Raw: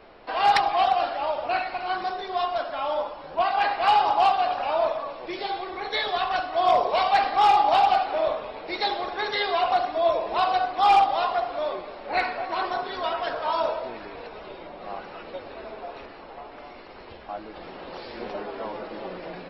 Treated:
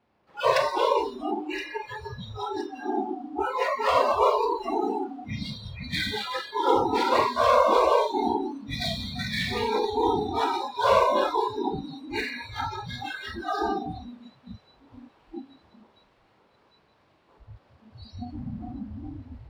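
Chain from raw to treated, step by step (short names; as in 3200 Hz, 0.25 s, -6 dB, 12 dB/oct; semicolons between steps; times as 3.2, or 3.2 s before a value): whisperiser; low shelf 87 Hz -4.5 dB; resonator 290 Hz, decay 1.1 s, mix 50%; ring modulator 240 Hz; power-law curve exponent 0.7; thin delay 1.02 s, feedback 79%, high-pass 1500 Hz, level -11 dB; Schroeder reverb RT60 2.1 s, combs from 29 ms, DRR 2 dB; spectral noise reduction 28 dB; HPF 61 Hz; low shelf 350 Hz +6 dB; gain +1 dB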